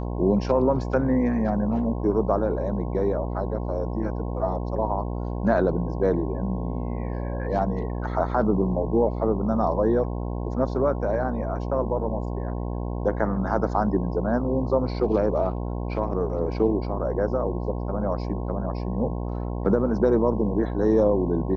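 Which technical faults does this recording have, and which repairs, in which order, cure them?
buzz 60 Hz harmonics 18 -29 dBFS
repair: de-hum 60 Hz, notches 18

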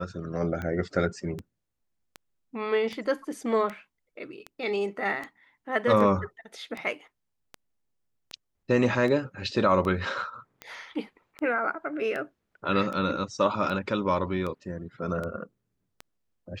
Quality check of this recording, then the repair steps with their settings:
tick 78 rpm -22 dBFS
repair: de-click

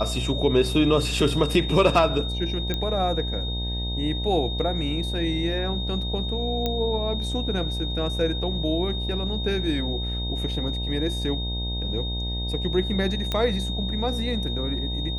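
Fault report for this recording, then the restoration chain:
buzz 60 Hz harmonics 16 -29 dBFS
whine 3.7 kHz -31 dBFS
2.74 s: pop -13 dBFS
6.66 s: pop -12 dBFS
13.32 s: pop -12 dBFS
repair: de-click; band-stop 3.7 kHz, Q 30; de-hum 60 Hz, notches 16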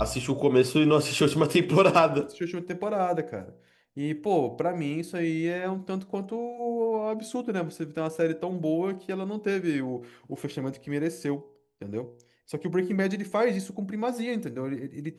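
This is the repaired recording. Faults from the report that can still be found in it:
nothing left

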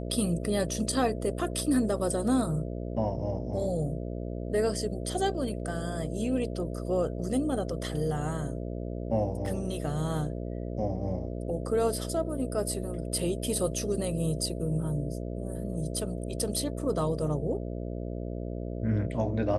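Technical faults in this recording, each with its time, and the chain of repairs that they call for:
buzz 60 Hz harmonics 11 -35 dBFS
9.46 s: dropout 2.1 ms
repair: de-hum 60 Hz, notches 11; interpolate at 9.46 s, 2.1 ms

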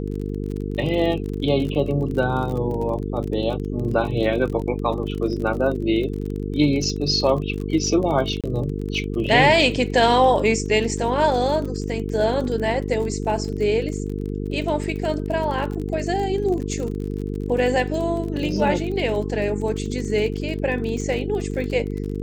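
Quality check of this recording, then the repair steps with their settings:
buzz 50 Hz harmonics 9 -27 dBFS
crackle 35 per s -29 dBFS
8.41–8.44 s: dropout 27 ms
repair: de-click; de-hum 50 Hz, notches 9; interpolate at 8.41 s, 27 ms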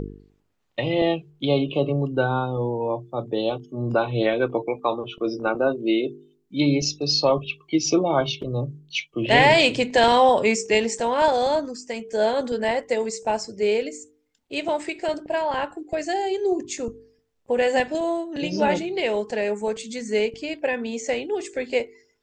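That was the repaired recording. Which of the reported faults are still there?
nothing left

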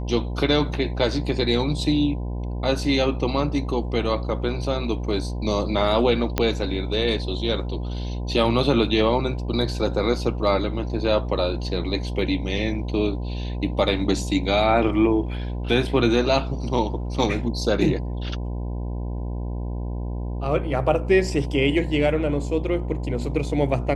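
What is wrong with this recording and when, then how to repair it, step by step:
buzz 60 Hz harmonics 17 -28 dBFS
6.38 s: pop -6 dBFS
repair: de-click; de-hum 60 Hz, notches 17

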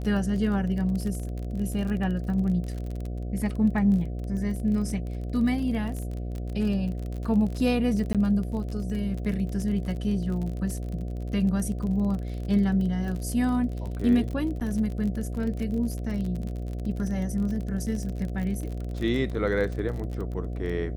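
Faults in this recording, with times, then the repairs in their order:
buzz 60 Hz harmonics 12 -32 dBFS
crackle 33 per s -32 dBFS
8.13–8.15 s: dropout 17 ms
14.60–14.61 s: dropout 8.3 ms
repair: de-click; de-hum 60 Hz, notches 12; interpolate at 8.13 s, 17 ms; interpolate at 14.60 s, 8.3 ms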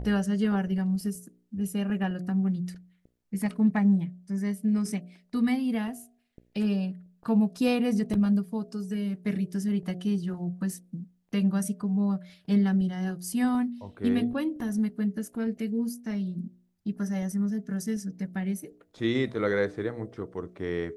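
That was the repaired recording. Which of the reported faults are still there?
nothing left

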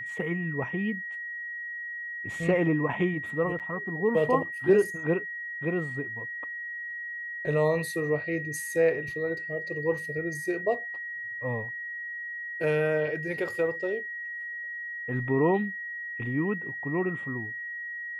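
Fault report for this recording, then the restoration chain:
whine 1.9 kHz -34 dBFS
3.59–3.60 s: dropout 8.2 ms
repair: band-stop 1.9 kHz, Q 30; interpolate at 3.59 s, 8.2 ms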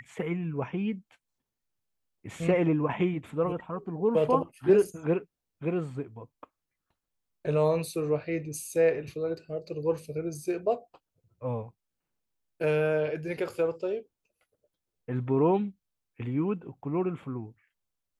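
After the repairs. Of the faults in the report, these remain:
nothing left

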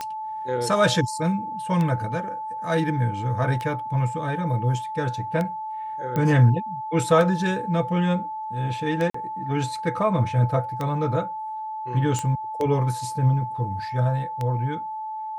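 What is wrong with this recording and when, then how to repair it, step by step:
tick 33 1/3 rpm -15 dBFS
whine 870 Hz -29 dBFS
6.16 s: pop -14 dBFS
9.10–9.14 s: dropout 44 ms
12.19 s: pop -14 dBFS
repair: de-click; band-stop 870 Hz, Q 30; interpolate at 9.10 s, 44 ms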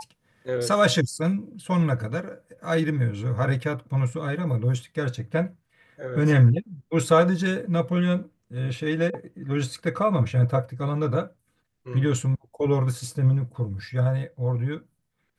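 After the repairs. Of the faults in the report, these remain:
nothing left

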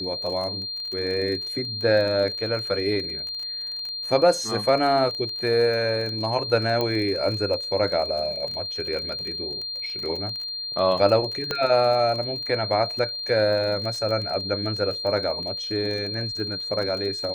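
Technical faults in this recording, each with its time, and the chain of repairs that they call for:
crackle 24 per s -30 dBFS
whine 4.2 kHz -29 dBFS
6.81 s: pop -12 dBFS
11.51 s: pop -11 dBFS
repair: de-click; band-stop 4.2 kHz, Q 30

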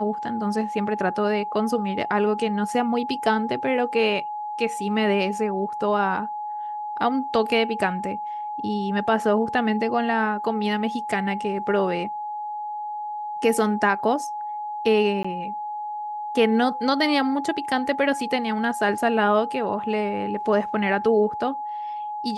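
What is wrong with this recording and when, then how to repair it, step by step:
whine 840 Hz -28 dBFS
15.23–15.24 s: dropout 15 ms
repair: band-stop 840 Hz, Q 30; interpolate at 15.23 s, 15 ms

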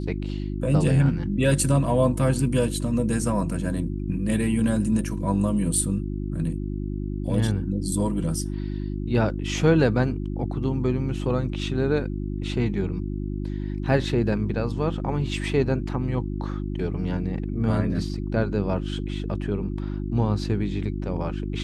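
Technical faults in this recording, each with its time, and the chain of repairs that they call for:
hum 50 Hz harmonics 7 -29 dBFS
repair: de-hum 50 Hz, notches 7

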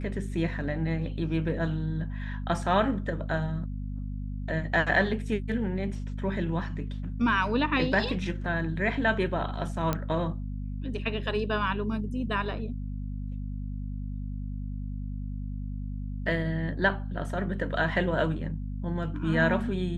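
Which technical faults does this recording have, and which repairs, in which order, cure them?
hum 50 Hz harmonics 5 -34 dBFS
9.93 s: pop -13 dBFS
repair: de-click; de-hum 50 Hz, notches 5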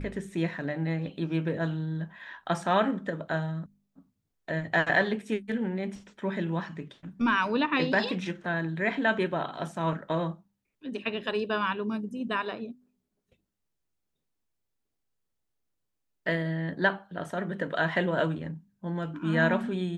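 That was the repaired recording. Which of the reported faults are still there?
nothing left

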